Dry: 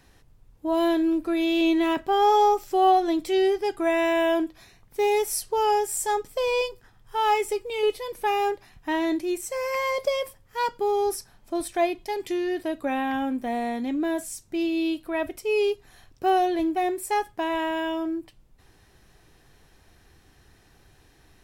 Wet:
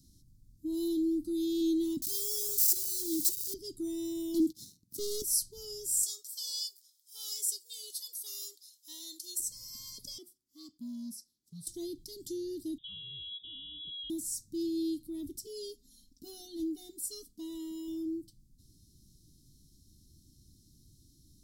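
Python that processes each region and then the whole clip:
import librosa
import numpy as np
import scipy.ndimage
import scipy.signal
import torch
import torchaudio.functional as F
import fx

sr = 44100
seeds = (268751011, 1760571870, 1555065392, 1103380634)

y = fx.chain(x, sr, fx.crossing_spikes(level_db=-18.0),
    fx.notch_comb(f0_hz=380.0), at=(2.02, 3.54))
y = fx.chain(y, sr, fx.highpass(hz=140.0, slope=12),
    fx.leveller(passes=3), at=(4.34, 5.22))
y = fx.chain(y, sr, fx.highpass(hz=670.0, slope=24),
    fx.high_shelf(hz=2700.0, db=8.5), at=(6.03, 9.4))
y = fx.chain(y, sr, fx.highpass(hz=660.0, slope=12),
    fx.high_shelf(hz=3100.0, db=-10.0),
    fx.ring_mod(carrier_hz=170.0), at=(10.18, 11.67))
y = fx.chain(y, sr, fx.peak_eq(hz=1500.0, db=-8.5, octaves=0.8),
    fx.freq_invert(carrier_hz=3600), at=(12.78, 14.1))
y = fx.chain(y, sr, fx.bass_treble(bass_db=-9, treble_db=-4),
    fx.comb(ms=4.1, depth=0.91), at=(15.46, 17.88))
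y = scipy.signal.sosfilt(scipy.signal.cheby2(4, 40, [500.0, 2600.0], 'bandstop', fs=sr, output='sos'), y)
y = fx.low_shelf(y, sr, hz=71.0, db=-7.0)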